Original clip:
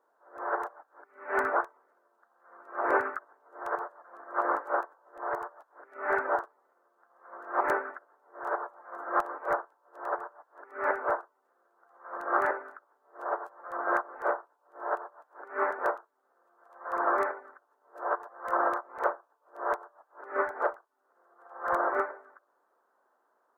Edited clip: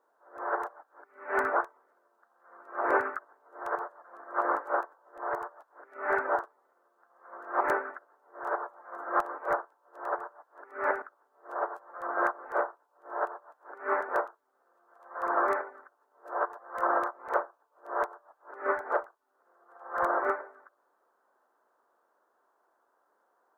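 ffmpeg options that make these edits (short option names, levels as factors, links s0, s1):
-filter_complex "[0:a]asplit=2[s0][s1];[s0]atrim=end=11.022[s2];[s1]atrim=start=12.718[s3];[s2][s3]acrossfade=d=0.004:c1=hsin:c2=hsin"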